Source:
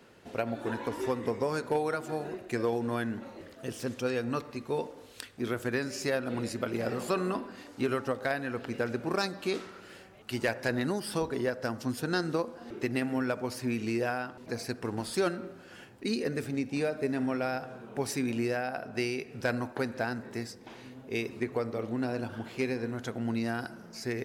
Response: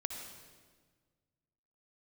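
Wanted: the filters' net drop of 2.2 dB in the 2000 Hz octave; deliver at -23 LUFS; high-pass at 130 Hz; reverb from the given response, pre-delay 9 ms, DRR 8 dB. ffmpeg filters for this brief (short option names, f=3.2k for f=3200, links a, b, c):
-filter_complex "[0:a]highpass=130,equalizer=f=2k:t=o:g=-3,asplit=2[a][b];[1:a]atrim=start_sample=2205,adelay=9[c];[b][c]afir=irnorm=-1:irlink=0,volume=-8.5dB[d];[a][d]amix=inputs=2:normalize=0,volume=10dB"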